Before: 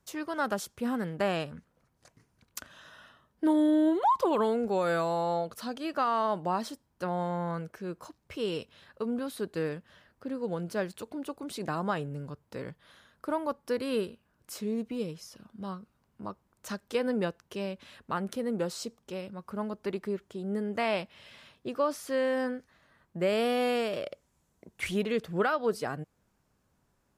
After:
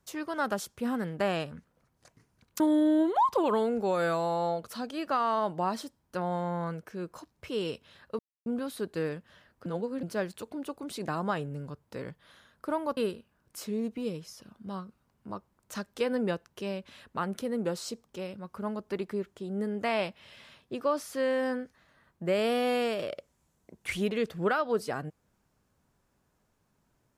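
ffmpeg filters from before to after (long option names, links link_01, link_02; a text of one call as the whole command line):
ffmpeg -i in.wav -filter_complex "[0:a]asplit=6[link_01][link_02][link_03][link_04][link_05][link_06];[link_01]atrim=end=2.602[link_07];[link_02]atrim=start=3.468:end=9.06,asetpts=PTS-STARTPTS,afade=type=out:start_time=5.588:duration=0.004:curve=hsin,apad=pad_dur=0.27[link_08];[link_03]atrim=start=9.06:end=10.262,asetpts=PTS-STARTPTS,afade=type=in:duration=0.004:curve=hsin[link_09];[link_04]atrim=start=10.258:end=10.632,asetpts=PTS-STARTPTS,areverse[link_10];[link_05]atrim=start=10.628:end=13.572[link_11];[link_06]atrim=start=13.908[link_12];[link_08][link_09]concat=n=2:v=0:a=1[link_13];[link_07][link_13]acrossfade=duration=0.004:curve1=hsin:curve2=hsin[link_14];[link_14][link_10]acrossfade=duration=0.004:curve1=hsin:curve2=hsin[link_15];[link_15][link_11]acrossfade=duration=0.004:curve1=hsin:curve2=hsin[link_16];[link_16][link_12]acrossfade=duration=0.004:curve1=hsin:curve2=hsin" out.wav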